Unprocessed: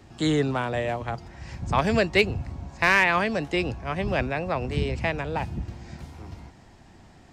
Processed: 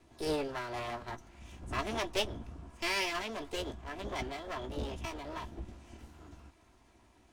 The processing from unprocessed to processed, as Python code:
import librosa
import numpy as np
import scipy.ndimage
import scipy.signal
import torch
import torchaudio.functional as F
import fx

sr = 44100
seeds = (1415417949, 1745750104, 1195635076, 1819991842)

y = fx.lower_of_two(x, sr, delay_ms=3.0)
y = fx.chorus_voices(y, sr, voices=6, hz=0.99, base_ms=16, depth_ms=3.0, mix_pct=25)
y = fx.formant_shift(y, sr, semitones=4)
y = y * 10.0 ** (-8.5 / 20.0)